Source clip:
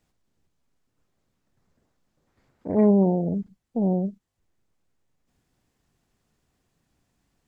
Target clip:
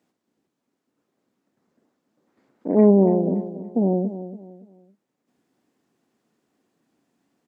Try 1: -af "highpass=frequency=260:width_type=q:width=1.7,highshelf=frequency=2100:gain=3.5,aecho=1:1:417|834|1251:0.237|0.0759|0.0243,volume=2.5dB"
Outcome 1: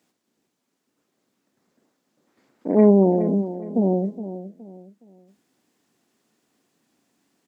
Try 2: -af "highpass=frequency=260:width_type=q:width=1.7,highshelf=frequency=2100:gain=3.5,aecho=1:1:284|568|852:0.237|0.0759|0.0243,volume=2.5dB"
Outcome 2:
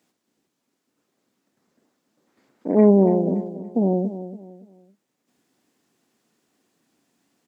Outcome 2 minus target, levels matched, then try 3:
2,000 Hz band +4.0 dB
-af "highpass=frequency=260:width_type=q:width=1.7,highshelf=frequency=2100:gain=-5.5,aecho=1:1:284|568|852:0.237|0.0759|0.0243,volume=2.5dB"

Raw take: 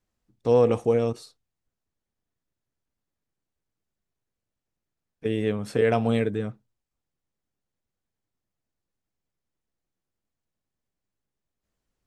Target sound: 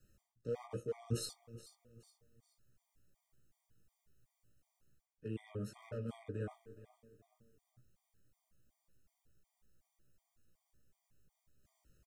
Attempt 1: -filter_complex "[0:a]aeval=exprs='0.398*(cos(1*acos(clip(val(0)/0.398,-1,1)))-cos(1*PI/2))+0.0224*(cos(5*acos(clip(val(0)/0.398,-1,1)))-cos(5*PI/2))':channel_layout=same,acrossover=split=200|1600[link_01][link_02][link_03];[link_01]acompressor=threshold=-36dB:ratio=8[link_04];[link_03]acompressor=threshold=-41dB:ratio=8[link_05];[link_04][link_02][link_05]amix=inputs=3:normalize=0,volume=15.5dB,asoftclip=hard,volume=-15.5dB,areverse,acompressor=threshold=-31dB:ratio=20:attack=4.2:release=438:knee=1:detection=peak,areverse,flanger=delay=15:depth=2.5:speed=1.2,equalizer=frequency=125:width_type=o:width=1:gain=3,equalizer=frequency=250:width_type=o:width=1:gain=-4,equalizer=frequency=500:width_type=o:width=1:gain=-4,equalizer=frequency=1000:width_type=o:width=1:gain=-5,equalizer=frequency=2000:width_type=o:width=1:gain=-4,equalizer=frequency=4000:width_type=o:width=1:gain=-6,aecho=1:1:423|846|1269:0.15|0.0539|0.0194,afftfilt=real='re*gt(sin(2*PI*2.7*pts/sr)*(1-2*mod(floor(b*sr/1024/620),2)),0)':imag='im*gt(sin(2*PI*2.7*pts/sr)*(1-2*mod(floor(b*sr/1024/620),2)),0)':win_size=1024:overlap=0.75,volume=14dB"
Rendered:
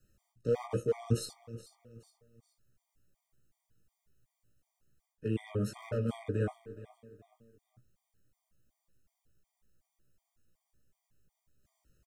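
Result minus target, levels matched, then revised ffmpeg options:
downward compressor: peak gain reduction −9.5 dB
-filter_complex "[0:a]aeval=exprs='0.398*(cos(1*acos(clip(val(0)/0.398,-1,1)))-cos(1*PI/2))+0.0224*(cos(5*acos(clip(val(0)/0.398,-1,1)))-cos(5*PI/2))':channel_layout=same,acrossover=split=200|1600[link_01][link_02][link_03];[link_01]acompressor=threshold=-36dB:ratio=8[link_04];[link_03]acompressor=threshold=-41dB:ratio=8[link_05];[link_04][link_02][link_05]amix=inputs=3:normalize=0,volume=15.5dB,asoftclip=hard,volume=-15.5dB,areverse,acompressor=threshold=-41dB:ratio=20:attack=4.2:release=438:knee=1:detection=peak,areverse,flanger=delay=15:depth=2.5:speed=1.2,equalizer=frequency=125:width_type=o:width=1:gain=3,equalizer=frequency=250:width_type=o:width=1:gain=-4,equalizer=frequency=500:width_type=o:width=1:gain=-4,equalizer=frequency=1000:width_type=o:width=1:gain=-5,equalizer=frequency=2000:width_type=o:width=1:gain=-4,equalizer=frequency=4000:width_type=o:width=1:gain=-6,aecho=1:1:423|846|1269:0.15|0.0539|0.0194,afftfilt=real='re*gt(sin(2*PI*2.7*pts/sr)*(1-2*mod(floor(b*sr/1024/620),2)),0)':imag='im*gt(sin(2*PI*2.7*pts/sr)*(1-2*mod(floor(b*sr/1024/620),2)),0)':win_size=1024:overlap=0.75,volume=14dB"

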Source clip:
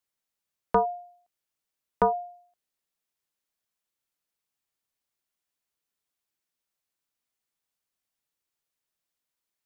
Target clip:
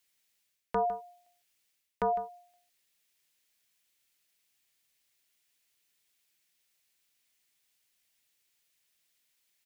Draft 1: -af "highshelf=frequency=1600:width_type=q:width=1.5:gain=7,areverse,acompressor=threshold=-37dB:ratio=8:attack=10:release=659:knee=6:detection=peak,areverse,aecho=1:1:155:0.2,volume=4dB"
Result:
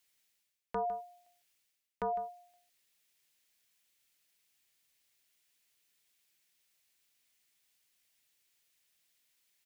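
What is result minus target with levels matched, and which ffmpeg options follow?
downward compressor: peak gain reduction +5.5 dB
-af "highshelf=frequency=1600:width_type=q:width=1.5:gain=7,areverse,acompressor=threshold=-30.5dB:ratio=8:attack=10:release=659:knee=6:detection=peak,areverse,aecho=1:1:155:0.2,volume=4dB"

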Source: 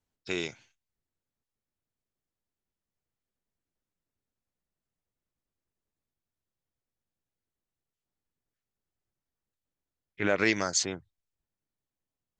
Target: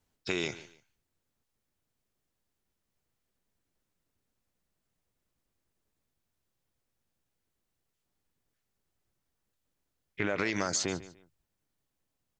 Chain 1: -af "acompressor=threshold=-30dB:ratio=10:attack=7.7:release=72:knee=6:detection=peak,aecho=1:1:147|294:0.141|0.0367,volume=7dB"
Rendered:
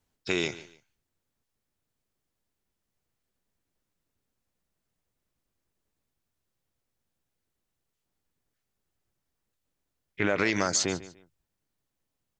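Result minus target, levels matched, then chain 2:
downward compressor: peak gain reduction −5.5 dB
-af "acompressor=threshold=-36dB:ratio=10:attack=7.7:release=72:knee=6:detection=peak,aecho=1:1:147|294:0.141|0.0367,volume=7dB"

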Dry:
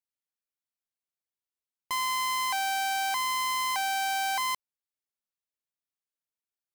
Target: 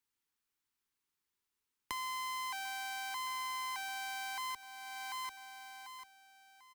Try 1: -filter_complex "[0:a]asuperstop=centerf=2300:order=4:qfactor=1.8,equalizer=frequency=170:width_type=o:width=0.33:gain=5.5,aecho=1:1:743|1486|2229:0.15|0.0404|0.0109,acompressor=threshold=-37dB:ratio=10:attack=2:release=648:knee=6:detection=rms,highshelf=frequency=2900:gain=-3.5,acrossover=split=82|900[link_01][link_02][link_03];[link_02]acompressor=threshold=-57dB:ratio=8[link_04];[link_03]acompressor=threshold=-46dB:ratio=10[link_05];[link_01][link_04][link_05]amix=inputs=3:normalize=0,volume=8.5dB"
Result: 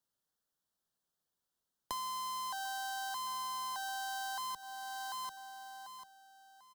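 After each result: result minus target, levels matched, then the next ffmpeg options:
500 Hz band +5.5 dB; 125 Hz band +2.5 dB
-filter_complex "[0:a]asuperstop=centerf=610:order=4:qfactor=1.8,equalizer=frequency=170:width_type=o:width=0.33:gain=5.5,aecho=1:1:743|1486|2229:0.15|0.0404|0.0109,acompressor=threshold=-37dB:ratio=10:attack=2:release=648:knee=6:detection=rms,highshelf=frequency=2900:gain=-3.5,acrossover=split=82|900[link_01][link_02][link_03];[link_02]acompressor=threshold=-57dB:ratio=8[link_04];[link_03]acompressor=threshold=-46dB:ratio=10[link_05];[link_01][link_04][link_05]amix=inputs=3:normalize=0,volume=8.5dB"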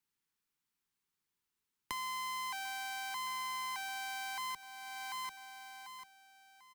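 125 Hz band +3.0 dB
-filter_complex "[0:a]asuperstop=centerf=610:order=4:qfactor=1.8,equalizer=frequency=170:width_type=o:width=0.33:gain=-6,aecho=1:1:743|1486|2229:0.15|0.0404|0.0109,acompressor=threshold=-37dB:ratio=10:attack=2:release=648:knee=6:detection=rms,highshelf=frequency=2900:gain=-3.5,acrossover=split=82|900[link_01][link_02][link_03];[link_02]acompressor=threshold=-57dB:ratio=8[link_04];[link_03]acompressor=threshold=-46dB:ratio=10[link_05];[link_01][link_04][link_05]amix=inputs=3:normalize=0,volume=8.5dB"

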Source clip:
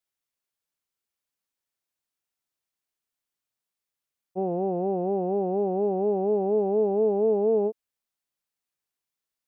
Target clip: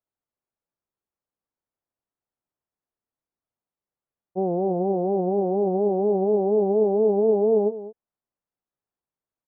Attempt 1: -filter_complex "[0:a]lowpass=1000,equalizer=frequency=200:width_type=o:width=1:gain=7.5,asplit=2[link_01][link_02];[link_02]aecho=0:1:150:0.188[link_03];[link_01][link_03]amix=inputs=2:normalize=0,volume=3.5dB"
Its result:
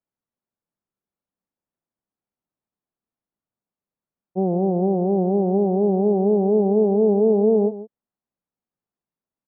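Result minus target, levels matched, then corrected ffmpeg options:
echo 56 ms early; 250 Hz band +3.5 dB
-filter_complex "[0:a]lowpass=1000,asplit=2[link_01][link_02];[link_02]aecho=0:1:206:0.188[link_03];[link_01][link_03]amix=inputs=2:normalize=0,volume=3.5dB"

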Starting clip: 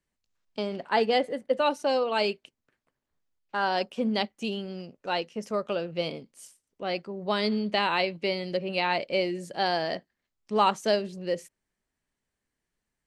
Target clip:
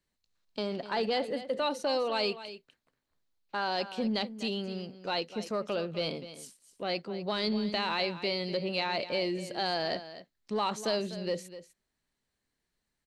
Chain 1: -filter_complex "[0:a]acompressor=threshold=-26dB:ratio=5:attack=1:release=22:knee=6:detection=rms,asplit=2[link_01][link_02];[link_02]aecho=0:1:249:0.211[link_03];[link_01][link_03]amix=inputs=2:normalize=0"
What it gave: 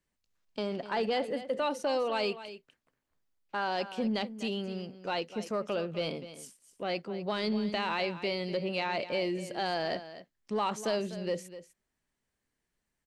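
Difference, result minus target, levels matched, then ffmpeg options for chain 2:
4,000 Hz band −3.5 dB
-filter_complex "[0:a]acompressor=threshold=-26dB:ratio=5:attack=1:release=22:knee=6:detection=rms,equalizer=frequency=4100:width_type=o:width=0.33:gain=8,asplit=2[link_01][link_02];[link_02]aecho=0:1:249:0.211[link_03];[link_01][link_03]amix=inputs=2:normalize=0"

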